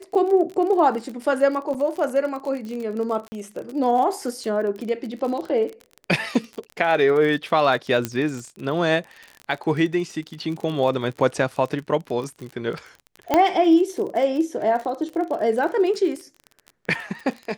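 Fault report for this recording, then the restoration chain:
crackle 33/s -29 dBFS
1.74–1.75 gap 6.5 ms
3.28–3.32 gap 40 ms
8.05 pop -9 dBFS
13.34 pop -5 dBFS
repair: de-click; interpolate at 1.74, 6.5 ms; interpolate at 3.28, 40 ms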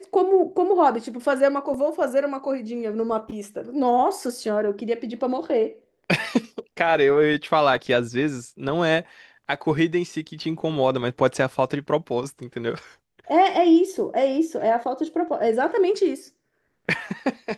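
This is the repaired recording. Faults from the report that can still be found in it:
none

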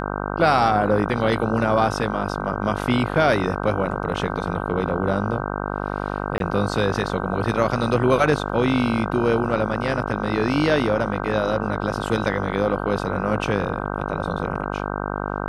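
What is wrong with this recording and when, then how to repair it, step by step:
buzz 50 Hz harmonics 31 -27 dBFS
6.38–6.4 gap 22 ms
8.49 gap 4.7 ms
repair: de-hum 50 Hz, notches 31; interpolate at 6.38, 22 ms; interpolate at 8.49, 4.7 ms

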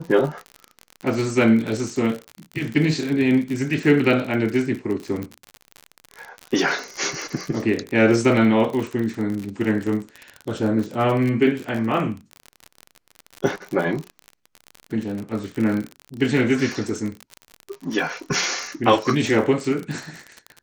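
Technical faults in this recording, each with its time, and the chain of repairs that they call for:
crackle 46/s -26 dBFS
5.23 pop -18 dBFS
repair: de-click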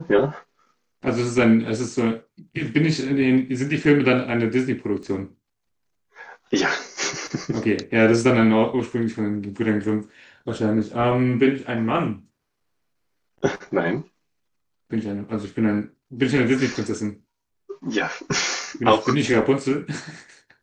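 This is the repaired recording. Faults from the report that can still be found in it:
none

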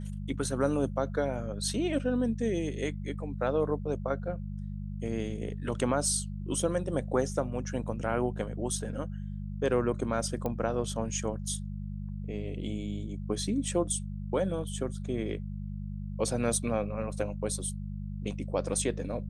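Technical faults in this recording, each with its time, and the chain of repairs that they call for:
hum 50 Hz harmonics 4 -37 dBFS
10.46 pop -20 dBFS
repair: de-click; de-hum 50 Hz, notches 4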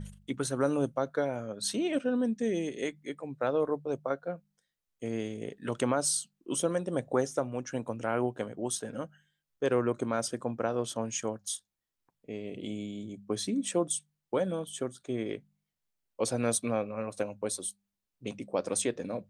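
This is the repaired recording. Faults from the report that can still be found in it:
none

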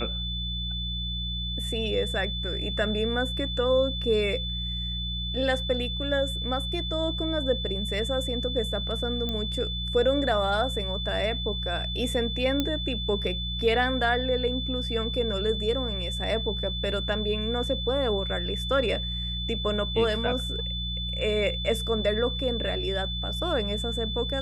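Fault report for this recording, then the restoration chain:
hum 60 Hz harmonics 3 -33 dBFS
tone 3500 Hz -32 dBFS
9.29 pop -18 dBFS
12.6 pop -12 dBFS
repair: de-click; de-hum 60 Hz, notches 3; notch 3500 Hz, Q 30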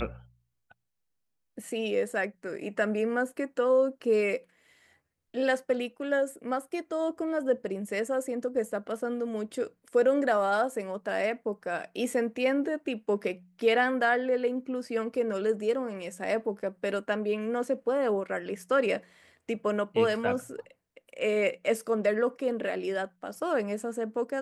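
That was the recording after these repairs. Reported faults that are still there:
none

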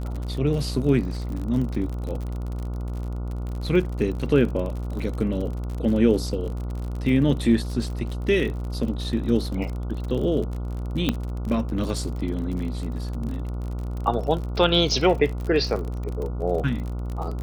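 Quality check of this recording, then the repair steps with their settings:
buzz 60 Hz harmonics 24 -29 dBFS
crackle 47/s -30 dBFS
11.09 pop -8 dBFS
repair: de-click; de-hum 60 Hz, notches 24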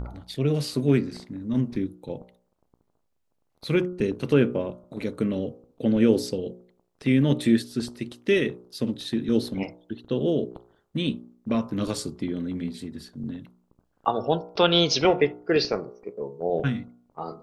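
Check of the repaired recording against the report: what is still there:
none

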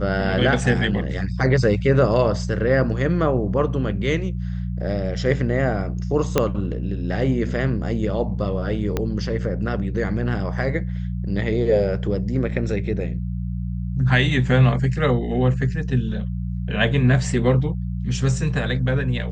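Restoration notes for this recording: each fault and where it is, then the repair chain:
hum 60 Hz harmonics 3 -26 dBFS
6.38 pop -3 dBFS
8.97 pop -9 dBFS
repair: de-click; de-hum 60 Hz, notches 3

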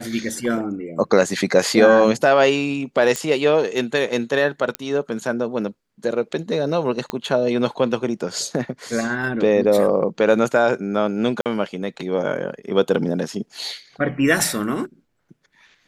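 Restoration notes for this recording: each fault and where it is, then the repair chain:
3.16 pop -8 dBFS
4.75 pop -8 dBFS
7.1 pop -10 dBFS
11.41–11.46 gap 48 ms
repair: de-click; interpolate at 11.41, 48 ms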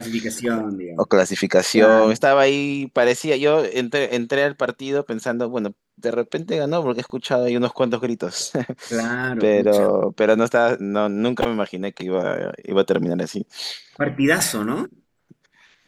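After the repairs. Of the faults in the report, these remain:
7.1 pop

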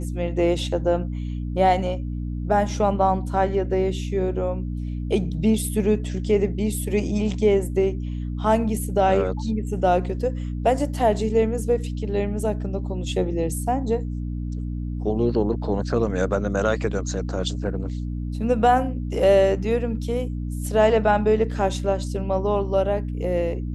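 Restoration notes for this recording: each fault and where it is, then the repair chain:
hum 60 Hz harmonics 5 -28 dBFS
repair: de-hum 60 Hz, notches 5

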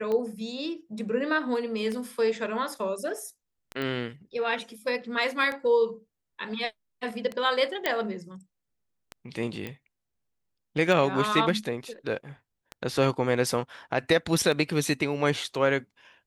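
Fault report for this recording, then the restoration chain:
tick 33 1/3 rpm -20 dBFS
3.82 pop -20 dBFS
7.86 pop -11 dBFS
9.67 pop -21 dBFS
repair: de-click

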